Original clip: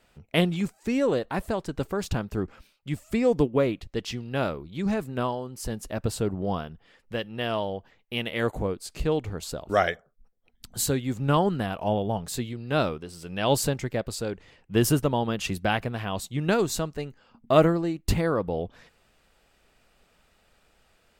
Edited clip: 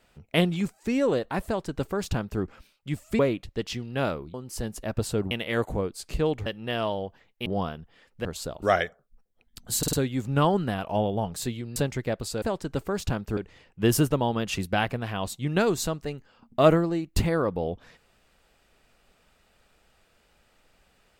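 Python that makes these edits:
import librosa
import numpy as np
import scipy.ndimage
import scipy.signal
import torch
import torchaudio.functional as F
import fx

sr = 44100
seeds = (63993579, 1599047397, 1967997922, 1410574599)

y = fx.edit(x, sr, fx.duplicate(start_s=1.46, length_s=0.95, to_s=14.29),
    fx.cut(start_s=3.19, length_s=0.38),
    fx.cut(start_s=4.72, length_s=0.69),
    fx.swap(start_s=6.38, length_s=0.79, other_s=8.17, other_length_s=1.15),
    fx.stutter(start_s=10.85, slice_s=0.05, count=4),
    fx.cut(start_s=12.68, length_s=0.95), tone=tone)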